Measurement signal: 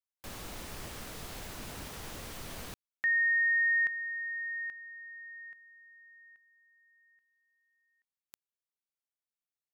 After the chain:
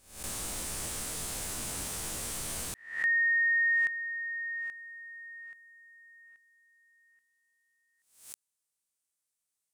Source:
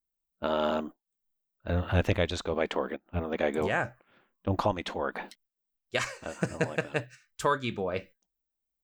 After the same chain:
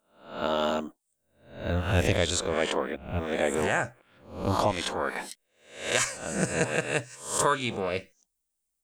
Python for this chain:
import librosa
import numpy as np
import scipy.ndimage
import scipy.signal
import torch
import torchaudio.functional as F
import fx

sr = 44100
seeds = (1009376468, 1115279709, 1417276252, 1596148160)

y = fx.spec_swells(x, sr, rise_s=0.52)
y = fx.peak_eq(y, sr, hz=8800.0, db=14.5, octaves=1.1)